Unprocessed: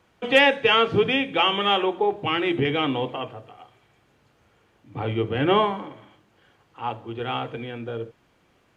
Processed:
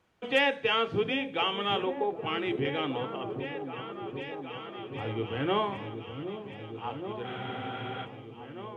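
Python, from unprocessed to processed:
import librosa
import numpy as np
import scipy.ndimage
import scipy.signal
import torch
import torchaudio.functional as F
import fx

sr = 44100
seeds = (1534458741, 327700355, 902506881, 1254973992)

y = fx.echo_opening(x, sr, ms=770, hz=400, octaves=1, feedback_pct=70, wet_db=-6)
y = fx.spec_freeze(y, sr, seeds[0], at_s=7.26, hold_s=0.79)
y = F.gain(torch.from_numpy(y), -8.5).numpy()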